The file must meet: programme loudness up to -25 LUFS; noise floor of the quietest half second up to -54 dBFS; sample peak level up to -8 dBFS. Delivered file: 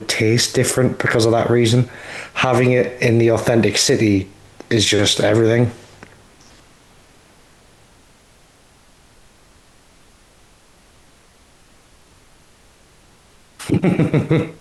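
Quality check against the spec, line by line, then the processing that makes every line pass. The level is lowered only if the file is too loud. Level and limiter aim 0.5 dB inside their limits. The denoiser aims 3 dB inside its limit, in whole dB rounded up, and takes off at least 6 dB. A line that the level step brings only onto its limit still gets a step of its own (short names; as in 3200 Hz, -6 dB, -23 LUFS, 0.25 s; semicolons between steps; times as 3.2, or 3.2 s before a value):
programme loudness -16.0 LUFS: fail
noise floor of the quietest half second -51 dBFS: fail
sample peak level -5.0 dBFS: fail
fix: gain -9.5 dB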